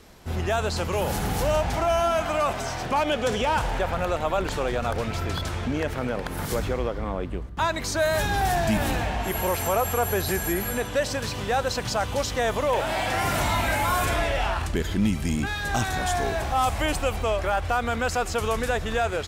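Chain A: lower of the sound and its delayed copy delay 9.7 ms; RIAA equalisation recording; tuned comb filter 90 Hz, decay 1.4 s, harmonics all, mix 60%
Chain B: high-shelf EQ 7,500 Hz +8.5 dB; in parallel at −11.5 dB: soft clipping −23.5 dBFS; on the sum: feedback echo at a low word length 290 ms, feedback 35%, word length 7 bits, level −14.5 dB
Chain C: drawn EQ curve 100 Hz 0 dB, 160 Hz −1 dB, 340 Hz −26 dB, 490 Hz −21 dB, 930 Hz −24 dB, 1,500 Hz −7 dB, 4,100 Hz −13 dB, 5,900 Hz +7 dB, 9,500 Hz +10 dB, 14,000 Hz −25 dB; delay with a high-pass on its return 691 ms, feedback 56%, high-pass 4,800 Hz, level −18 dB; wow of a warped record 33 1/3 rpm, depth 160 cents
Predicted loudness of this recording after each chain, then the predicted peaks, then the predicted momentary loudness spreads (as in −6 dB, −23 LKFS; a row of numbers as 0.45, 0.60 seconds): −29.5, −23.5, −29.5 LKFS; −13.5, −11.5, −11.0 dBFS; 11, 5, 8 LU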